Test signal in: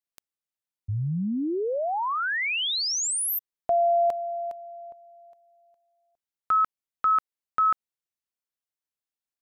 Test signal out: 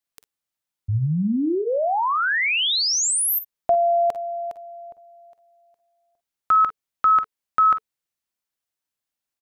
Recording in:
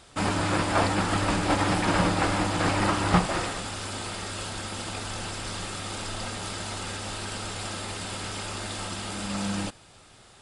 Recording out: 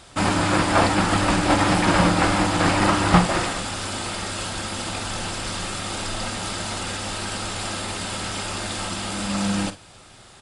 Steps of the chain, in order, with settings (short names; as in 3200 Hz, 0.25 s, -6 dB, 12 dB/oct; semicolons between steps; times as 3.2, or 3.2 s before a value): notch 440 Hz, Q 12; on a send: tapped delay 46/56 ms -14.5/-17 dB; on the sum: gain +5.5 dB